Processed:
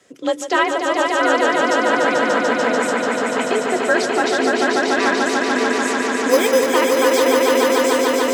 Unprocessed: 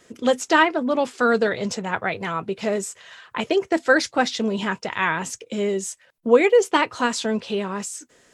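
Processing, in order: 6.29–6.69 careless resampling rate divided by 8×, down none, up hold; frequency shift +42 Hz; swelling echo 0.146 s, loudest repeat 5, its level -4 dB; gain -1 dB

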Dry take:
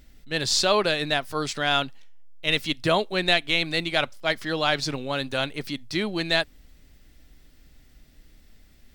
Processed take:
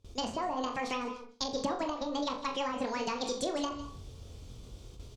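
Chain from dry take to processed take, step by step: reverse; upward compressor, threshold -44 dBFS; reverse; treble ducked by the level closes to 500 Hz, closed at -19.5 dBFS; doubler 41 ms -7 dB; feedback echo 72 ms, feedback 30%, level -9 dB; compressor, threshold -32 dBFS, peak gain reduction 11.5 dB; HPF 69 Hz 6 dB/oct; tilt -2.5 dB/oct; speed mistake 45 rpm record played at 78 rpm; gate with hold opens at -39 dBFS; bell 5000 Hz +9.5 dB 1.8 oct; on a send at -12 dB: reverb RT60 0.35 s, pre-delay 0.153 s; on the sum: gain -2.5 dB

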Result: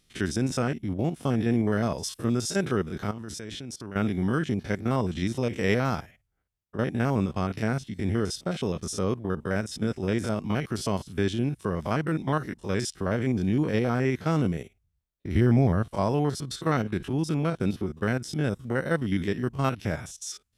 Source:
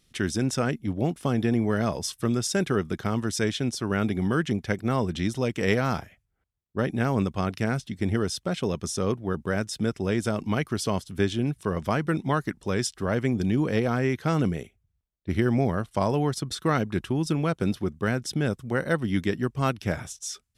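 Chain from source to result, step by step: stepped spectrum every 50 ms; 3.11–3.96 level quantiser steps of 19 dB; 15.35–15.84 low shelf 140 Hz +9.5 dB

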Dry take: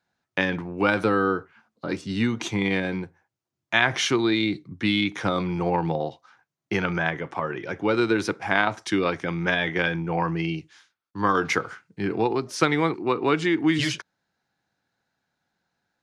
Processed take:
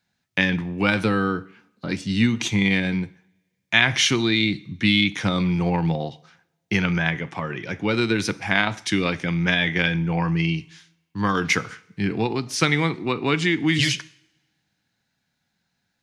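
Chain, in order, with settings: band shelf 680 Hz -8.5 dB 2.6 oct; two-slope reverb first 0.61 s, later 1.8 s, from -24 dB, DRR 16 dB; gain +6 dB

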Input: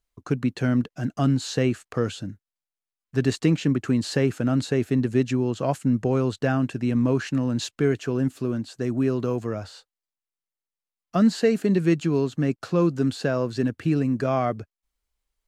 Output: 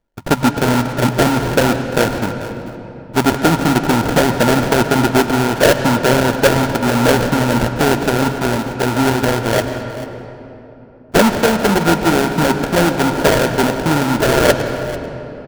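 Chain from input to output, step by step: LPF 7200 Hz 24 dB/oct; de-hum 45.63 Hz, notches 4; harmonic-percussive split percussive +9 dB; bell 600 Hz +11.5 dB 0.26 oct; in parallel at -1.5 dB: limiter -10.5 dBFS, peak gain reduction 9.5 dB; on the sum: sample-rate reducer 1100 Hz, jitter 20%; small resonant body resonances 940/1400 Hz, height 10 dB, ringing for 45 ms; soft clip -3.5 dBFS, distortion -18 dB; echo 0.44 s -16.5 dB; on a send at -8 dB: reverb RT60 3.5 s, pre-delay 94 ms

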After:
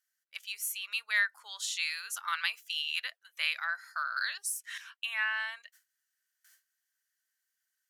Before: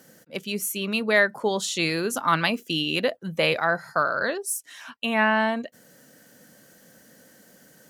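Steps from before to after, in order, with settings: HPF 1400 Hz 24 dB/oct; gate with hold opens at -44 dBFS; 4.16–4.78 three-band squash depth 100%; gain -6 dB

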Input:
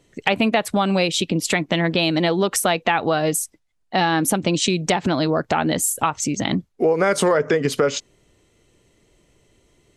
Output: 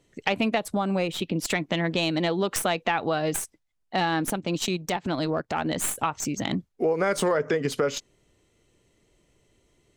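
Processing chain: tracing distortion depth 0.037 ms; 0.57–1.34 bell 1600 Hz -> 9000 Hz -10 dB 1.3 oct; 4.22–5.77 transient shaper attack -5 dB, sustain -9 dB; gain -6 dB

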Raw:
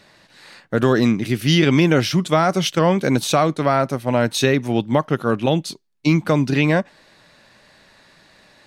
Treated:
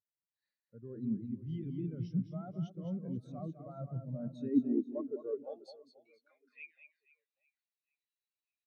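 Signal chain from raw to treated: high shelf 4100 Hz +5 dB; reverse; compressor 12:1, threshold -27 dBFS, peak gain reduction 17 dB; reverse; sample leveller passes 1; high-pass sweep 74 Hz -> 2600 Hz, 3.57–6.74; reverse bouncing-ball echo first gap 0.21 s, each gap 1.3×, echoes 5; on a send at -19 dB: reverb RT60 0.55 s, pre-delay 77 ms; on the sum: spectral expander 2.5:1; gain -7.5 dB

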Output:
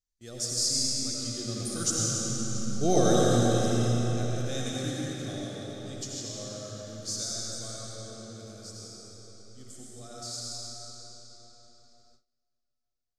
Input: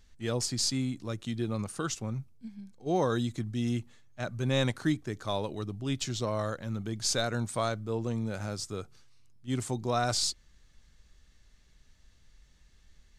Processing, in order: Doppler pass-by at 2.76, 7 m/s, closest 3.1 m; digital reverb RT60 4.8 s, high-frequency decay 0.85×, pre-delay 45 ms, DRR -6 dB; gate with hold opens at -54 dBFS; Butterworth band-stop 960 Hz, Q 3.2; resonant high shelf 3900 Hz +11 dB, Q 1.5; gain +2.5 dB

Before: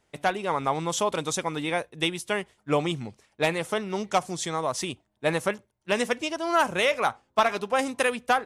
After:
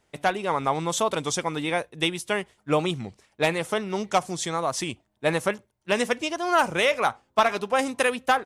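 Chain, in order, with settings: record warp 33 1/3 rpm, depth 100 cents; gain +1.5 dB

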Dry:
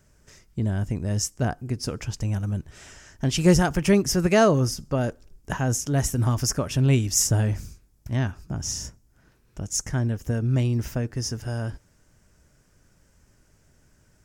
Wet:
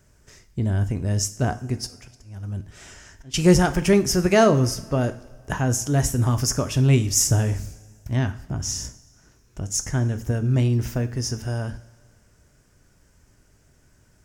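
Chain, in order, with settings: 1.8–3.34 auto swell 0.61 s; two-slope reverb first 0.41 s, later 1.9 s, from -16 dB, DRR 9.5 dB; gain +1.5 dB

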